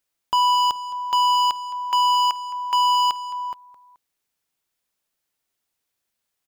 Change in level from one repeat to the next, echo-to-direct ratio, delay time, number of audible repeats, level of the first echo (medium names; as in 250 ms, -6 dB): -7.5 dB, -15.5 dB, 215 ms, 2, -16.0 dB